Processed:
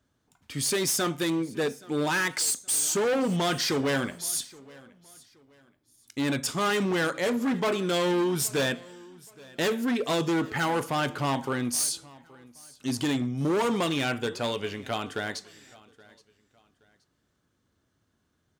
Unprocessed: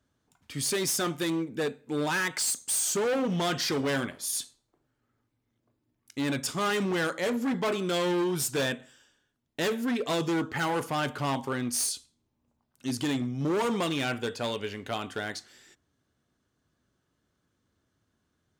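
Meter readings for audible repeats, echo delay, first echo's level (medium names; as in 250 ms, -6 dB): 2, 823 ms, -23.0 dB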